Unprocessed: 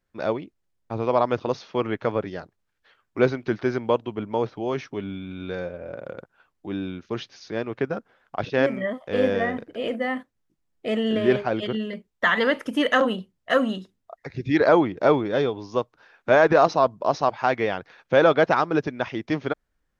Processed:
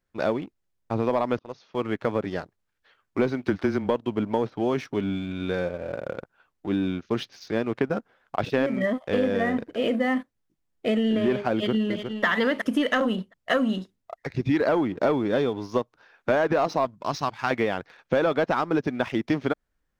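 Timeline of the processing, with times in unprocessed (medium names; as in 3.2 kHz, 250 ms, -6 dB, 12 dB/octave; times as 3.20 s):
1.39–2.37 s: fade in, from -24 dB
3.45–3.89 s: frequency shift -18 Hz
11.53–12.25 s: echo throw 360 ms, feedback 25%, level -9 dB
16.85–17.51 s: peaking EQ 560 Hz -14 dB 1.5 oct
whole clip: dynamic bell 240 Hz, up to +5 dB, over -36 dBFS, Q 2.1; waveshaping leveller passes 1; compression, threshold -20 dBFS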